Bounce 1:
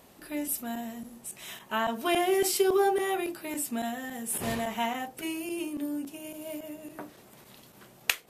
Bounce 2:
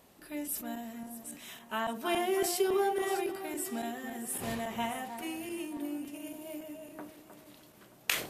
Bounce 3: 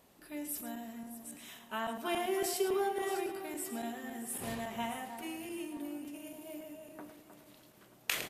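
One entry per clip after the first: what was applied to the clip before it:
delay that swaps between a low-pass and a high-pass 310 ms, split 1,600 Hz, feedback 58%, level −8 dB; level that may fall only so fast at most 110 dB per second; level −5 dB
single-tap delay 108 ms −11 dB; level −3.5 dB

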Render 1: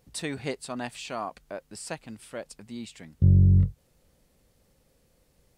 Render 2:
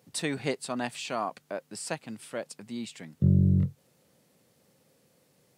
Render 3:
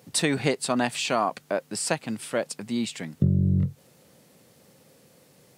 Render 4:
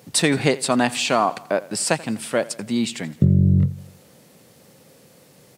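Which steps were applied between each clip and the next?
high-pass filter 120 Hz 24 dB per octave; level +2 dB
downward compressor 6 to 1, threshold −27 dBFS, peak gain reduction 10 dB; level +9 dB
repeating echo 85 ms, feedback 53%, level −20 dB; level +5.5 dB

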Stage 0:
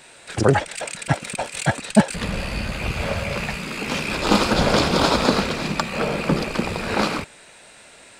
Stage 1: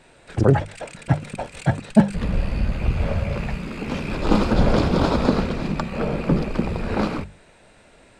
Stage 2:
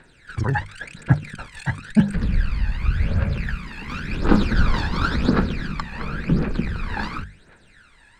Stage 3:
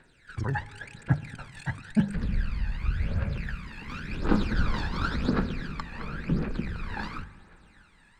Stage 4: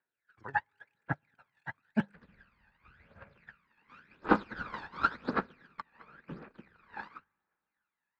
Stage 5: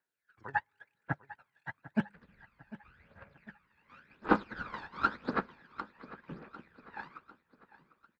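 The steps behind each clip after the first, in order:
spectral tilt −3 dB per octave; mains-hum notches 50/100/150/200 Hz; level −4.5 dB
graphic EQ with 15 bands 630 Hz −6 dB, 1,600 Hz +12 dB, 4,000 Hz +5 dB; phase shifter 0.93 Hz, delay 1.2 ms, feedback 71%; level −7.5 dB
convolution reverb RT60 3.1 s, pre-delay 7 ms, DRR 16.5 dB; level −7.5 dB
resonant band-pass 1,100 Hz, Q 0.73; expander for the loud parts 2.5 to 1, over −50 dBFS; level +8.5 dB
repeating echo 749 ms, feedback 47%, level −17 dB; level −1 dB

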